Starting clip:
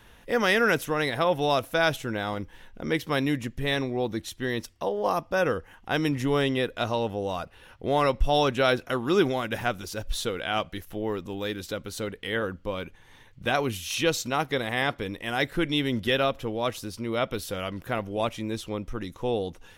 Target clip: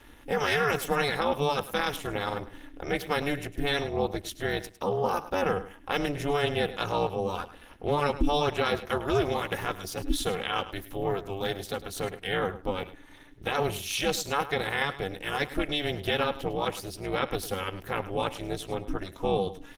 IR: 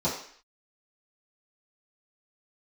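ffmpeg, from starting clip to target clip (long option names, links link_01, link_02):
-filter_complex "[0:a]asettb=1/sr,asplit=3[link_01][link_02][link_03];[link_01]atrim=end=8.564[link_04];[link_02]atrim=start=8.56:end=9.28,asetpts=PTS-STARTPTS,afade=type=in:duration=0.004:curve=qsin,afade=type=out:start_time=0.716:duration=0.004:curve=qsin,agate=range=-21dB:threshold=-45dB:ratio=16:detection=peak[link_05];[link_03]atrim=start=9.276[link_06];[link_04][link_05]acrossfade=duration=0.004:curve1=hsin:curve2=qsin[link_07];[link_07][link_06]acrossfade=duration=0.004:curve1=qsin:curve2=hsin,equalizer=frequency=190:width_type=o:width=2.1:gain=-4.5,asettb=1/sr,asplit=3[link_08][link_09][link_10];[link_08]atrim=end=4.794[link_11];[link_09]atrim=start=4.79:end=5.54,asetpts=PTS-STARTPTS,afade=type=in:duration=0.004:curve=qsin,afade=type=out:start_time=0.746:duration=0.004:curve=qsin,bandreject=frequency=60:width_type=h:width=6,bandreject=frequency=120:width_type=h:width=6,bandreject=frequency=180:width_type=h:width=6,bandreject=frequency=240:width_type=h:width=6,bandreject=frequency=300:width_type=h:width=6[link_12];[link_10]atrim=start=5.536[link_13];[link_11][link_12]acrossfade=duration=0.004:curve1=hsin:curve2=qsin[link_14];[link_14][link_13]acrossfade=duration=0.004:curve1=qsin:curve2=hsin,aecho=1:1:2.3:0.83,alimiter=limit=-16.5dB:level=0:latency=1:release=32,tremolo=f=290:d=0.919,aecho=1:1:104|208:0.188|0.0301,volume=3dB" -ar 48000 -c:a libopus -b:a 32k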